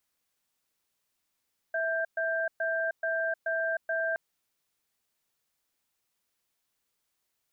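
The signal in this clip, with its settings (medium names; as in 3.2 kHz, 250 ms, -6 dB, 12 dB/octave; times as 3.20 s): cadence 655 Hz, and 1.58 kHz, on 0.31 s, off 0.12 s, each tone -29.5 dBFS 2.42 s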